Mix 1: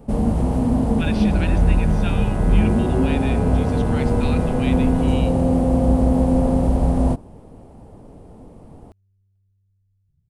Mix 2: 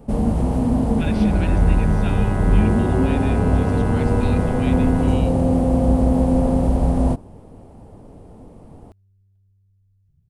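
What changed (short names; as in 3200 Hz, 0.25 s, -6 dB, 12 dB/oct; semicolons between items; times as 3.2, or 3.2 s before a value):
speech -4.0 dB; second sound +5.0 dB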